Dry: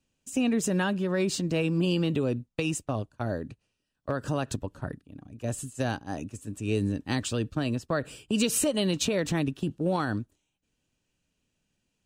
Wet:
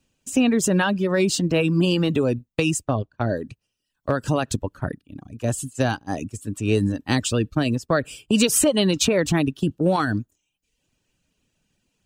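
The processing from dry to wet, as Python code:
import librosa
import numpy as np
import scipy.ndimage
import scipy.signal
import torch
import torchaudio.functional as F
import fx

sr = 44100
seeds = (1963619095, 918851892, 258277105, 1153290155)

y = fx.lowpass(x, sr, hz=fx.line((2.94, 3200.0), (3.35, 5700.0)), slope=12, at=(2.94, 3.35), fade=0.02)
y = fx.dereverb_blind(y, sr, rt60_s=0.67)
y = F.gain(torch.from_numpy(y), 8.0).numpy()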